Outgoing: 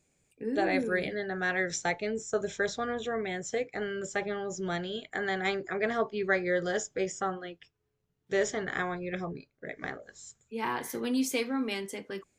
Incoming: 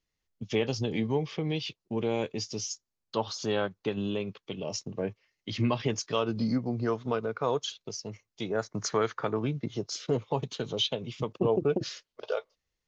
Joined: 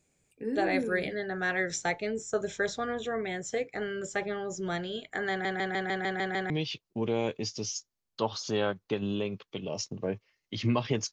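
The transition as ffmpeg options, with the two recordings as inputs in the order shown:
ffmpeg -i cue0.wav -i cue1.wav -filter_complex "[0:a]apad=whole_dur=11.12,atrim=end=11.12,asplit=8[link_01][link_02][link_03][link_04][link_05][link_06][link_07][link_08];[link_01]atrim=end=5.452[link_09];[link_02]atrim=start=5.298:end=5.452[link_10];[link_03]atrim=start=5.298:end=5.452[link_11];[link_04]atrim=start=5.298:end=5.452[link_12];[link_05]atrim=start=5.298:end=5.452[link_13];[link_06]atrim=start=5.298:end=5.452[link_14];[link_07]atrim=start=5.298:end=5.452[link_15];[link_08]atrim=start=5.298:end=5.452[link_16];[1:a]atrim=start=1.448:end=6.07[link_17];[link_09][link_10]acrossfade=duration=0.004:curve1=hsin:curve2=hsin[link_18];[link_18][link_11]acrossfade=duration=0.004:curve1=hsin:curve2=hsin[link_19];[link_19][link_12]acrossfade=duration=0.004:curve1=hsin:curve2=hsin[link_20];[link_20][link_13]acrossfade=duration=0.004:curve1=hsin:curve2=hsin[link_21];[link_21][link_14]acrossfade=duration=0.004:curve1=hsin:curve2=hsin[link_22];[link_22][link_15]acrossfade=duration=0.004:curve1=hsin:curve2=hsin[link_23];[link_23][link_16]acrossfade=duration=0.004:curve1=hsin:curve2=hsin[link_24];[link_24][link_17]acrossfade=duration=0.004:curve1=hsin:curve2=hsin" out.wav

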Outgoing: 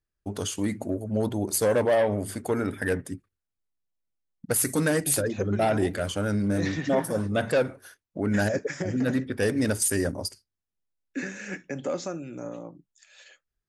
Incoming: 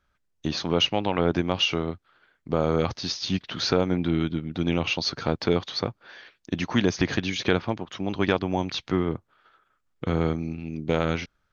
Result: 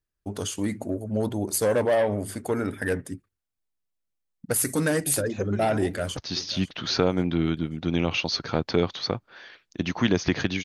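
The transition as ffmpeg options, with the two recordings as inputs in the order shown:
ffmpeg -i cue0.wav -i cue1.wav -filter_complex "[0:a]apad=whole_dur=10.64,atrim=end=10.64,atrim=end=6.172[link_01];[1:a]atrim=start=2.898:end=7.37[link_02];[link_01][link_02]acrossfade=duration=0.004:curve1=hsin:curve2=hsin,asplit=2[link_03][link_04];[link_04]afade=type=in:start_time=5.82:duration=0.01,afade=type=out:start_time=6.17:duration=0.01,aecho=0:1:540|1080|1620|2160:0.141254|0.0635642|0.0286039|0.0128717[link_05];[link_03][link_05]amix=inputs=2:normalize=0" out.wav

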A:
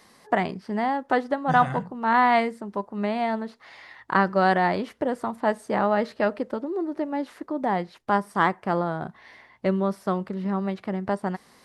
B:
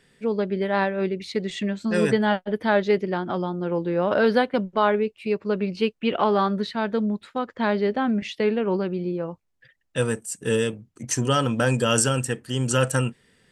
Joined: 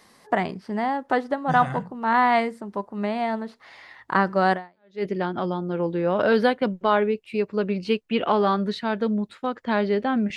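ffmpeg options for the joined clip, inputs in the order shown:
ffmpeg -i cue0.wav -i cue1.wav -filter_complex "[0:a]apad=whole_dur=10.36,atrim=end=10.36,atrim=end=5.05,asetpts=PTS-STARTPTS[link_01];[1:a]atrim=start=2.45:end=8.28,asetpts=PTS-STARTPTS[link_02];[link_01][link_02]acrossfade=duration=0.52:curve1=exp:curve2=exp" out.wav

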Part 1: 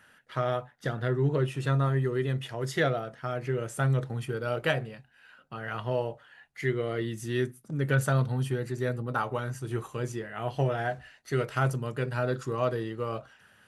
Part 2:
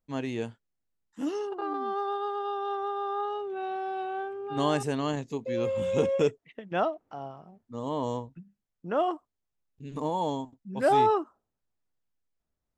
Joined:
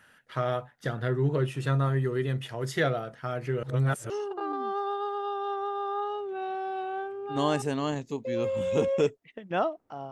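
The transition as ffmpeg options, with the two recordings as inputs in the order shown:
ffmpeg -i cue0.wav -i cue1.wav -filter_complex "[0:a]apad=whole_dur=10.11,atrim=end=10.11,asplit=2[link_01][link_02];[link_01]atrim=end=3.632[link_03];[link_02]atrim=start=3.628:end=4.102,asetpts=PTS-STARTPTS,areverse[link_04];[1:a]atrim=start=1.308:end=7.32[link_05];[link_03][link_04]acrossfade=duration=0.004:curve1=hsin:curve2=hsin[link_06];[link_06][link_05]acrossfade=duration=0.004:curve1=hsin:curve2=hsin" out.wav

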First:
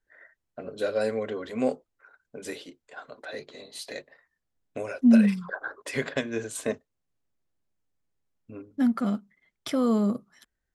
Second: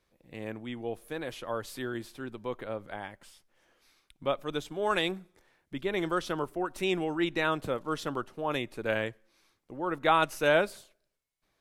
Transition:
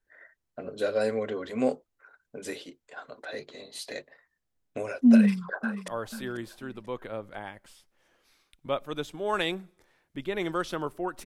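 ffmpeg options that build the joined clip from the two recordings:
ffmpeg -i cue0.wav -i cue1.wav -filter_complex "[0:a]apad=whole_dur=11.25,atrim=end=11.25,atrim=end=5.882[link_01];[1:a]atrim=start=1.448:end=6.82[link_02];[link_01][link_02]acrossfade=duration=0.004:curve1=hsin:curve2=hsin,asplit=2[link_03][link_04];[link_04]afade=type=in:start_time=5.14:duration=0.01,afade=type=out:start_time=5.88:duration=0.01,aecho=0:1:490|980|1470:0.199526|0.0698342|0.024442[link_05];[link_03][link_05]amix=inputs=2:normalize=0" out.wav

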